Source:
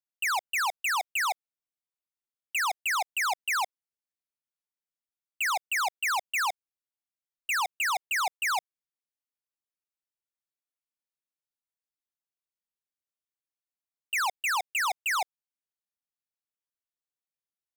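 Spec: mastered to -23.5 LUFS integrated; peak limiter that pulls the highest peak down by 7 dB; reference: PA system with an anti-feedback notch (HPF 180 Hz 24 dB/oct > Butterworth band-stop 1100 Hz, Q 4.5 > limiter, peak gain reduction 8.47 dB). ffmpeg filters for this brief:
-af "alimiter=level_in=9.5dB:limit=-24dB:level=0:latency=1,volume=-9.5dB,highpass=f=180:w=0.5412,highpass=f=180:w=1.3066,asuperstop=centerf=1100:order=8:qfactor=4.5,volume=18.5dB,alimiter=limit=-17dB:level=0:latency=1"

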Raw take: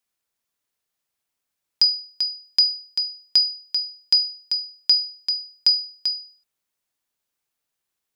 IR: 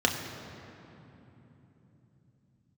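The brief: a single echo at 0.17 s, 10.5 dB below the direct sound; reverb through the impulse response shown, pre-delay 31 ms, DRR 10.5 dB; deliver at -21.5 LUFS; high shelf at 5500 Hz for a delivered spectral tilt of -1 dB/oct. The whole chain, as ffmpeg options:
-filter_complex "[0:a]highshelf=f=5.5k:g=-8,aecho=1:1:170:0.299,asplit=2[a][b];[1:a]atrim=start_sample=2205,adelay=31[c];[b][c]afir=irnorm=-1:irlink=0,volume=-23dB[d];[a][d]amix=inputs=2:normalize=0,volume=2.5dB"

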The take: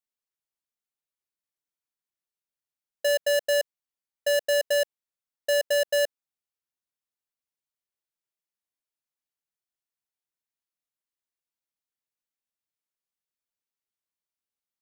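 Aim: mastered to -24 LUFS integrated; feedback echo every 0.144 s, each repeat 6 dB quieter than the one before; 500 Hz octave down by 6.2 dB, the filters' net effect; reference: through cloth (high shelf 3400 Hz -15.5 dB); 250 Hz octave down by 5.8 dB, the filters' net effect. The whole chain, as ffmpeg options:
-af "equalizer=f=250:t=o:g=-5,equalizer=f=500:t=o:g=-6,highshelf=f=3.4k:g=-15.5,aecho=1:1:144|288|432|576|720|864:0.501|0.251|0.125|0.0626|0.0313|0.0157,volume=7.5dB"

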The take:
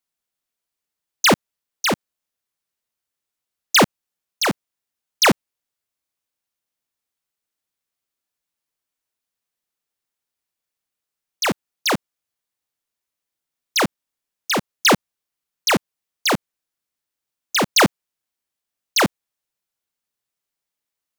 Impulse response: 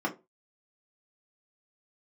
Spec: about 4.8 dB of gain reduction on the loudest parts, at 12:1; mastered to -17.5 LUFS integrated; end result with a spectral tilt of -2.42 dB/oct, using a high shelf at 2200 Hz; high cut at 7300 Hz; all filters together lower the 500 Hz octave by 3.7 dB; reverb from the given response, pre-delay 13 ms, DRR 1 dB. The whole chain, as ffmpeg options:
-filter_complex "[0:a]lowpass=7.3k,equalizer=f=500:t=o:g=-5,highshelf=f=2.2k:g=4,acompressor=threshold=-14dB:ratio=12,asplit=2[a][b];[1:a]atrim=start_sample=2205,adelay=13[c];[b][c]afir=irnorm=-1:irlink=0,volume=-9.5dB[d];[a][d]amix=inputs=2:normalize=0,volume=2.5dB"

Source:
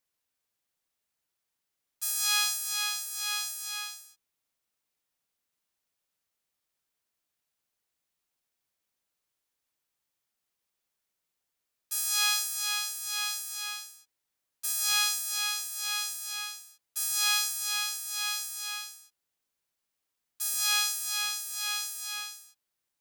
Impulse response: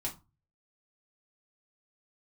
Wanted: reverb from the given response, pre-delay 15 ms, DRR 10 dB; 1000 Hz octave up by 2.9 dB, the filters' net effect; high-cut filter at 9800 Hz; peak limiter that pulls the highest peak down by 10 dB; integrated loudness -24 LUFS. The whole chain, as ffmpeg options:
-filter_complex "[0:a]lowpass=9.8k,equalizer=f=1k:t=o:g=4,alimiter=limit=-22dB:level=0:latency=1,asplit=2[a][b];[1:a]atrim=start_sample=2205,adelay=15[c];[b][c]afir=irnorm=-1:irlink=0,volume=-11dB[d];[a][d]amix=inputs=2:normalize=0,volume=9.5dB"

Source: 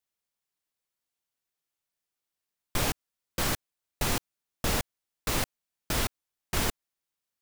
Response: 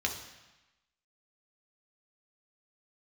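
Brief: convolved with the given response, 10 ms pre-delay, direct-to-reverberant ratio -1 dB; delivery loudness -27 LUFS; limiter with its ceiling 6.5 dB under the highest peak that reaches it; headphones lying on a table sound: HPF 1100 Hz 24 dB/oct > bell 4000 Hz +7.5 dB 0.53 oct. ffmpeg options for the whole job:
-filter_complex "[0:a]alimiter=limit=-21dB:level=0:latency=1,asplit=2[a][b];[1:a]atrim=start_sample=2205,adelay=10[c];[b][c]afir=irnorm=-1:irlink=0,volume=-5dB[d];[a][d]amix=inputs=2:normalize=0,highpass=f=1.1k:w=0.5412,highpass=f=1.1k:w=1.3066,equalizer=f=4k:t=o:w=0.53:g=7.5,volume=5dB"

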